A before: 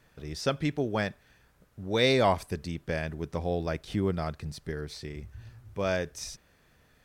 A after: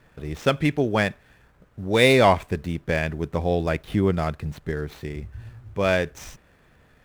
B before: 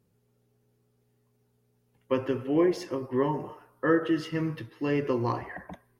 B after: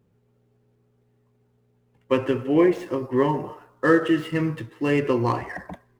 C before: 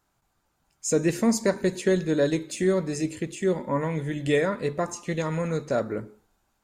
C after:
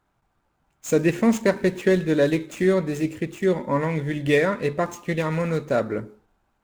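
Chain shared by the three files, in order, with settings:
median filter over 9 samples; dynamic bell 2.5 kHz, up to +5 dB, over -45 dBFS, Q 1.3; normalise loudness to -23 LUFS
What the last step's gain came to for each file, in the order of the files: +7.0 dB, +5.5 dB, +3.0 dB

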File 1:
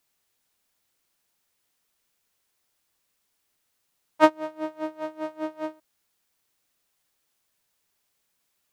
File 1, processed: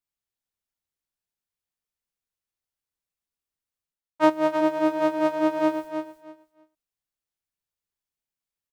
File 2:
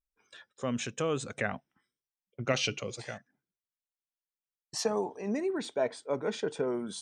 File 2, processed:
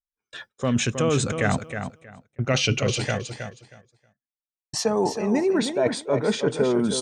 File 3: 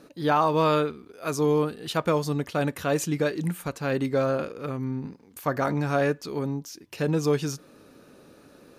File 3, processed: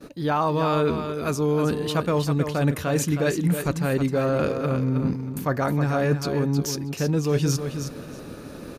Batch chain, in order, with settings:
expander -50 dBFS; bass shelf 130 Hz +11.5 dB; reverse; compression 5:1, threshold -33 dBFS; reverse; feedback delay 317 ms, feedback 19%, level -8 dB; normalise loudness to -24 LUFS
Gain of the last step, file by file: +15.0 dB, +14.0 dB, +12.0 dB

